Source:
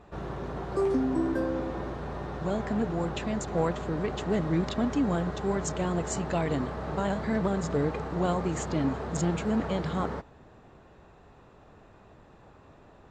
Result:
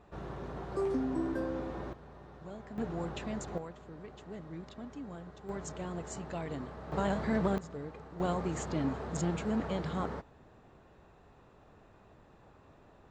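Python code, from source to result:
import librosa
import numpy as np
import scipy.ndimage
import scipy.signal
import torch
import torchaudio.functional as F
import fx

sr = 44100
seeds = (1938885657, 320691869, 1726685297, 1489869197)

y = fx.gain(x, sr, db=fx.steps((0.0, -6.0), (1.93, -16.0), (2.78, -7.0), (3.58, -17.5), (5.49, -10.5), (6.92, -2.5), (7.58, -15.0), (8.2, -5.0)))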